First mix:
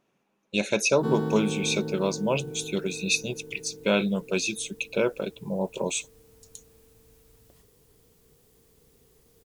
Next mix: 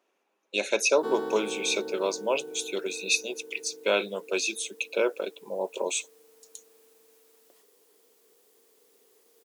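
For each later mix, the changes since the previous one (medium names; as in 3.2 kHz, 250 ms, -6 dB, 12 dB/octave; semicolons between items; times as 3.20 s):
master: add high-pass 330 Hz 24 dB/octave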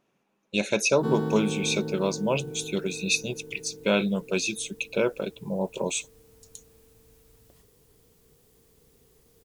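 master: remove high-pass 330 Hz 24 dB/octave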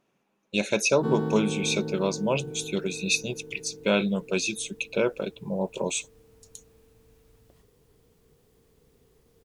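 background: add treble shelf 4.6 kHz -9 dB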